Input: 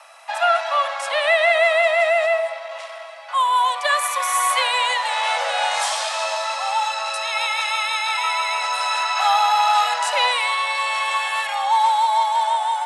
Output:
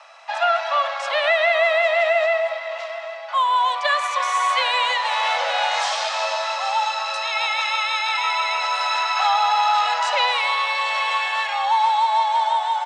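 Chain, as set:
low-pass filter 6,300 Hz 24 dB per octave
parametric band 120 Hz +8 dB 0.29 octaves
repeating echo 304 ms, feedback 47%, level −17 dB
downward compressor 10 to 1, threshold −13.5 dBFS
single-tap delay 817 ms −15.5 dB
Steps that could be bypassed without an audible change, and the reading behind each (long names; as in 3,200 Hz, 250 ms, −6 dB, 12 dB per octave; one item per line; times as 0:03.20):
parametric band 120 Hz: nothing at its input below 450 Hz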